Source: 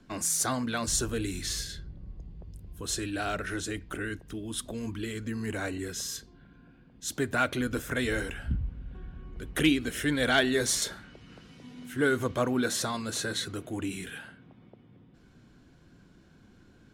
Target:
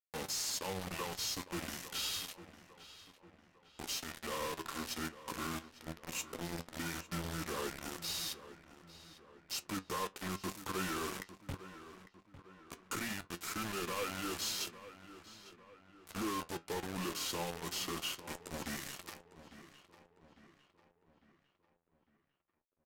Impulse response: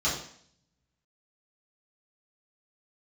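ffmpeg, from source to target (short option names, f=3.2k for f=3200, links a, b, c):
-filter_complex "[0:a]highpass=200,aecho=1:1:1.6:0.39,alimiter=limit=-22dB:level=0:latency=1:release=487,asoftclip=type=tanh:threshold=-30dB,acrusher=bits=5:mix=0:aa=0.000001,flanger=delay=7.6:depth=1.7:regen=62:speed=0.13:shape=triangular,asetrate=32667,aresample=44100,asplit=2[a][b];[b]adelay=852,lowpass=f=3.3k:p=1,volume=-14dB,asplit=2[c][d];[d]adelay=852,lowpass=f=3.3k:p=1,volume=0.49,asplit=2[e][f];[f]adelay=852,lowpass=f=3.3k:p=1,volume=0.49,asplit=2[g][h];[h]adelay=852,lowpass=f=3.3k:p=1,volume=0.49,asplit=2[i][j];[j]adelay=852,lowpass=f=3.3k:p=1,volume=0.49[k];[c][e][g][i][k]amix=inputs=5:normalize=0[l];[a][l]amix=inputs=2:normalize=0"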